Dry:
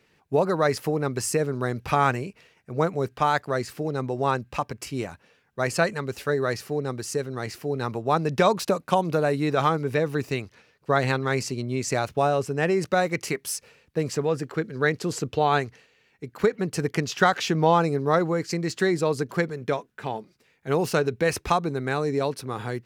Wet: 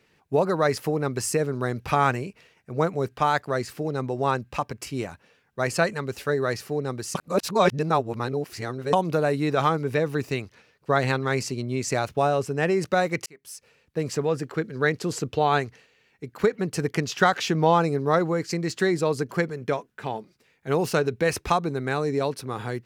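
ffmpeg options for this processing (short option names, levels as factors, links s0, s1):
-filter_complex "[0:a]asettb=1/sr,asplit=3[s0][s1][s2];[s0]atrim=end=19.194[s3];[s1]atrim=start=19.19:end=19.88,asetpts=PTS-STARTPTS,afade=t=in:d=0.004:c=qsin,afade=t=out:st=0.686:d=0.004:c=qsin,bandreject=f=3700:w=12[s4];[s2]atrim=start=19.876[s5];[s3][s4]acrossfade=d=0.004:c1=hsin:c2=qsin[s6];[s6][s5]acrossfade=d=0.004:c1=qsin:c2=hsin,asplit=4[s7][s8][s9][s10];[s7]atrim=end=7.152[s11];[s8]atrim=start=7.148:end=8.932,asetpts=PTS-STARTPTS,areverse[s12];[s9]atrim=start=8.928:end=13.26,asetpts=PTS-STARTPTS,afade=t=out:st=4.328:d=0.004:c=hsin[s13];[s10]atrim=start=13.26,asetpts=PTS-STARTPTS,afade=t=in:d=0.88[s14];[s11][s12]acrossfade=d=0.004:c1=hsin:c2=hsin[s15];[s13][s14]concat=n=2:v=0:a=1[s16];[s15][s16]acrossfade=d=0.004:c1=hsin:c2=hsin"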